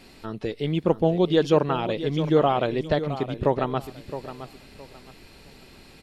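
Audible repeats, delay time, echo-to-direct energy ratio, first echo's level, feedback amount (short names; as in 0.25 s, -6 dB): 2, 0.666 s, -11.5 dB, -12.0 dB, 25%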